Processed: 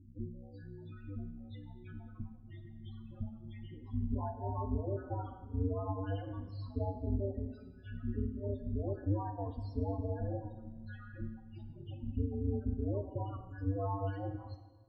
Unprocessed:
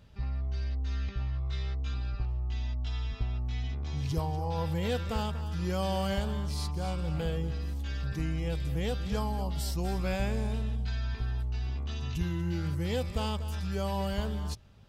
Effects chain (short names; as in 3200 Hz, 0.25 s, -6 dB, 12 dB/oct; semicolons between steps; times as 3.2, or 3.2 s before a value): reverb removal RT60 1.5 s; HPF 130 Hz 24 dB/oct; reverb removal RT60 1 s; dynamic EQ 990 Hz, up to +3 dB, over -58 dBFS, Q 5.6; limiter -31.5 dBFS, peak gain reduction 8.5 dB; pre-echo 0.122 s -17 dB; half-wave rectifier; ring modulator 100 Hz; loudest bins only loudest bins 8; tape spacing loss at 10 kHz 35 dB; plate-style reverb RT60 1.3 s, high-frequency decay 0.9×, DRR 7 dB; gain +12.5 dB